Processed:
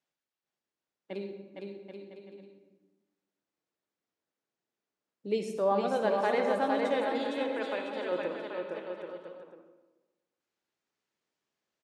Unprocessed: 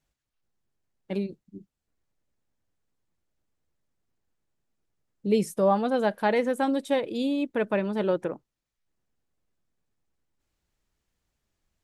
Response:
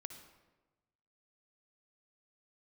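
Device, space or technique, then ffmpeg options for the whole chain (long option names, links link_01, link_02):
supermarket ceiling speaker: -filter_complex "[0:a]asettb=1/sr,asplit=3[link_01][link_02][link_03];[link_01]atrim=end=7.184[link_04];[link_02]atrim=start=7.18:end=8.12,asetpts=PTS-STARTPTS,afade=type=in:duration=0.004:curve=qsin,afade=type=out:start_time=0.936:duration=0.004:curve=qsin,highpass=frequency=850:poles=1[link_05];[link_03]atrim=start=8.116[link_06];[link_04][link_05]acrossfade=duration=0.004:curve1=hsin:curve2=qsin[link_07];[link_07][link_06]acrossfade=duration=0.004:curve1=qsin:curve2=hsin,highpass=300,lowpass=6400[link_08];[1:a]atrim=start_sample=2205[link_09];[link_08][link_09]afir=irnorm=-1:irlink=0,aecho=1:1:460|782|1007|1165|1276:0.631|0.398|0.251|0.158|0.1"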